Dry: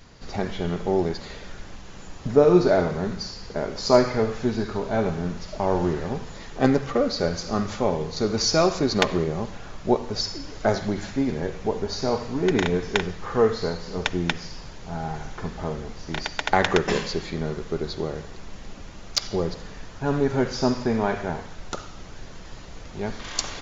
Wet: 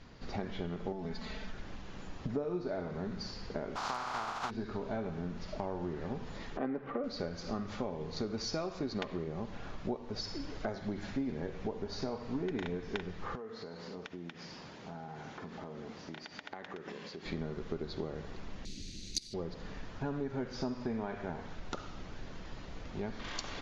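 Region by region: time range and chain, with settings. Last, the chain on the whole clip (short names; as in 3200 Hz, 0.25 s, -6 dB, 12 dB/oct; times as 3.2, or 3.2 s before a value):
0.92–1.53 bell 410 Hz -6.5 dB 0.64 oct + comb 4.6 ms, depth 73% + compressor 2:1, threshold -29 dBFS
3.75–4.49 spectral contrast lowered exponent 0.23 + band shelf 990 Hz +14.5 dB 1.3 oct + compressor 4:1, threshold -15 dBFS
6.57–7.04 three-band isolator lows -14 dB, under 180 Hz, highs -24 dB, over 2600 Hz + upward compressor, threshold -24 dBFS + mismatched tape noise reduction decoder only
13.35–17.26 HPF 160 Hz + compressor 12:1, threshold -36 dBFS
18.65–19.34 minimum comb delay 0.47 ms + EQ curve 360 Hz 0 dB, 1000 Hz -28 dB, 3000 Hz +7 dB, 4700 Hz +15 dB
whole clip: LPF 4500 Hz 12 dB/oct; compressor 6:1, threshold -30 dBFS; bell 250 Hz +3.5 dB 0.77 oct; gain -5 dB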